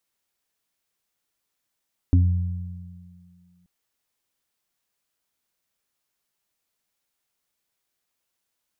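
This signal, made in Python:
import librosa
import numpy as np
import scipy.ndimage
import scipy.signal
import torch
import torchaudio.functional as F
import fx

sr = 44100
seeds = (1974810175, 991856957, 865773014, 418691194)

y = fx.additive(sr, length_s=1.53, hz=88.9, level_db=-12, upper_db=(-16.0, -6), decay_s=1.63, upper_decays_s=(2.97, 0.29))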